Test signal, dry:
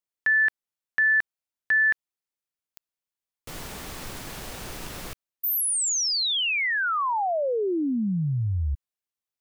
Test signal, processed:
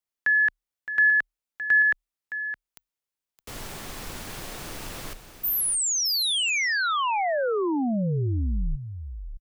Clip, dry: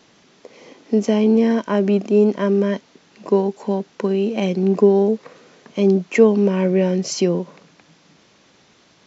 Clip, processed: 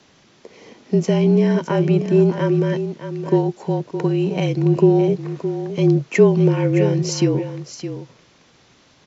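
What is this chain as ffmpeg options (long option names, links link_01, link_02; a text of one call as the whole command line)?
ffmpeg -i in.wav -af "aecho=1:1:616:0.299,afreqshift=-38" out.wav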